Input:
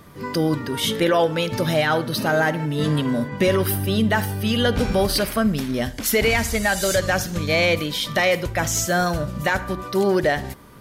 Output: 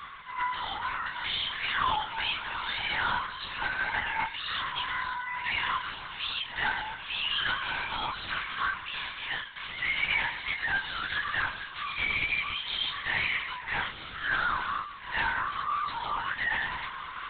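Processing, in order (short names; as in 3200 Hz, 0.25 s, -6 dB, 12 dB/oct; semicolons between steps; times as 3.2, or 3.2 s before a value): octaver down 2 oct, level +1 dB; steep high-pass 870 Hz 72 dB/oct; reverse; upward compressor, threshold -27 dBFS; reverse; overloaded stage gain 28 dB; chorus 0.28 Hz, delay 16 ms, depth 3.7 ms; time stretch by phase-locked vocoder 1.6×; pre-echo 0.112 s -14 dB; LPC vocoder at 8 kHz whisper; gain +4.5 dB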